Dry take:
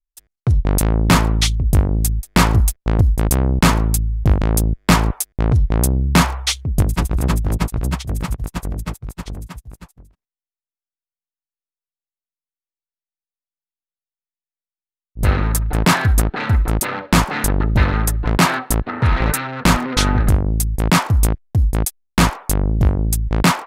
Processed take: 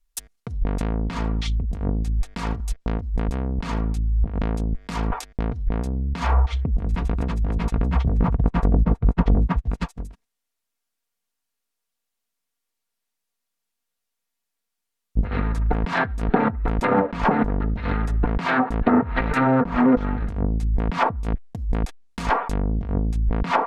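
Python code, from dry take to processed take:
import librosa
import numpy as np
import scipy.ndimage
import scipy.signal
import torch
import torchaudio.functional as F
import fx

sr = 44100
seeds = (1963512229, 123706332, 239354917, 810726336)

y = fx.over_compress(x, sr, threshold_db=-26.0, ratio=-1.0)
y = fx.env_lowpass_down(y, sr, base_hz=870.0, full_db=-17.5)
y = y + 0.42 * np.pad(y, (int(4.3 * sr / 1000.0), 0))[:len(y)]
y = y * 10.0 ** (3.5 / 20.0)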